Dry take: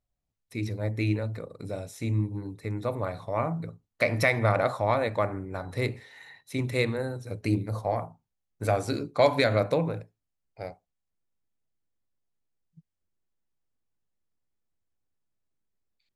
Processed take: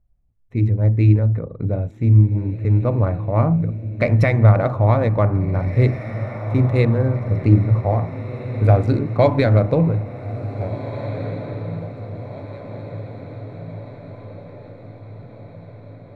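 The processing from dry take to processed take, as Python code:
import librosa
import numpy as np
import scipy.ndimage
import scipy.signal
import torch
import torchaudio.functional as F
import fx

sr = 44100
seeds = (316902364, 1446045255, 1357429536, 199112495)

p1 = fx.wiener(x, sr, points=9)
p2 = fx.riaa(p1, sr, side='playback')
p3 = fx.rider(p2, sr, range_db=4, speed_s=0.5)
p4 = p2 + (p3 * librosa.db_to_amplitude(-2.5))
p5 = fx.echo_diffused(p4, sr, ms=1805, feedback_pct=55, wet_db=-11.5)
y = p5 * librosa.db_to_amplitude(-1.0)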